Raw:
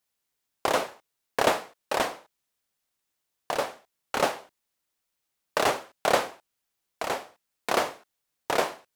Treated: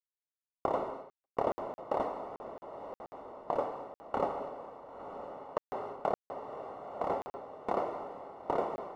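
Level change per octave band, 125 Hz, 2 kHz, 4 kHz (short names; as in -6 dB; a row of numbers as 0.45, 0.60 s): -5.0 dB, -19.5 dB, under -20 dB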